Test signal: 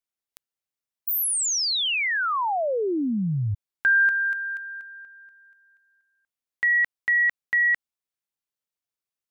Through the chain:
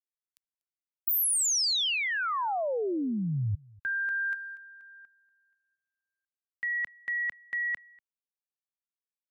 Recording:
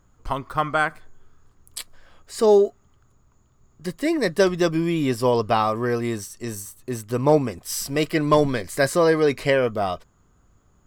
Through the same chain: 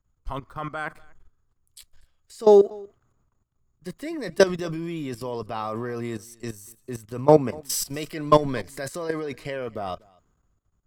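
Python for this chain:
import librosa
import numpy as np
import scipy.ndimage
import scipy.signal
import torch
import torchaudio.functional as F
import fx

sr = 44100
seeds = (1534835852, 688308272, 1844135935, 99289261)

y = fx.level_steps(x, sr, step_db=15)
y = y + 10.0 ** (-23.5 / 20.0) * np.pad(y, (int(242 * sr / 1000.0), 0))[:len(y)]
y = fx.band_widen(y, sr, depth_pct=40)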